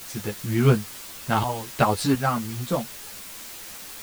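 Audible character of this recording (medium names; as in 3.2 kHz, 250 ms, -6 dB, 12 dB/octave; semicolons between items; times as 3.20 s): random-step tremolo 2.8 Hz, depth 75%; a quantiser's noise floor 8-bit, dither triangular; a shimmering, thickened sound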